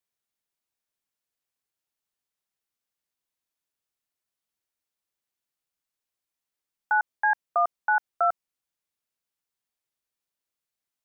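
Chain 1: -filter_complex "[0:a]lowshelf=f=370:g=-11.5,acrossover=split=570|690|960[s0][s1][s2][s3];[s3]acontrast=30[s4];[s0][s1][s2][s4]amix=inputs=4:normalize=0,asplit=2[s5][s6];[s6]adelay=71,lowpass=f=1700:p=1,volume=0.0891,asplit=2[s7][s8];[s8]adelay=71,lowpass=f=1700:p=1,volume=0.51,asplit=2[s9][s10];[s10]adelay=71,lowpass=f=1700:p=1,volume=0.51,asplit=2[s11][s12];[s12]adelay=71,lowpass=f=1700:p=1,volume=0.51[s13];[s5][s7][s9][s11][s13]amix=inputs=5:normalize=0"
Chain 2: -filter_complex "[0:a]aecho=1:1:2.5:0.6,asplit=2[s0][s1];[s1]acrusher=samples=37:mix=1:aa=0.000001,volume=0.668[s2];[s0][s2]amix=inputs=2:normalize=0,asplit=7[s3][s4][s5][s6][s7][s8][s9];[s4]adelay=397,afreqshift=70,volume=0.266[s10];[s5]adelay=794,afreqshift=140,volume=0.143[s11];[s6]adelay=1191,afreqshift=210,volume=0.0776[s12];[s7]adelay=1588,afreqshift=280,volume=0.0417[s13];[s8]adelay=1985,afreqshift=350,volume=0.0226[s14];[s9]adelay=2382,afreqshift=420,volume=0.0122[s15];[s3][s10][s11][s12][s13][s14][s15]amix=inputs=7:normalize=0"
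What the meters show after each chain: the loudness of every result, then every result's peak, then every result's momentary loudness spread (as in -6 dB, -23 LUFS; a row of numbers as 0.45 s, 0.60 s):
-23.5 LUFS, -23.0 LUFS; -12.5 dBFS, -7.0 dBFS; 3 LU, 19 LU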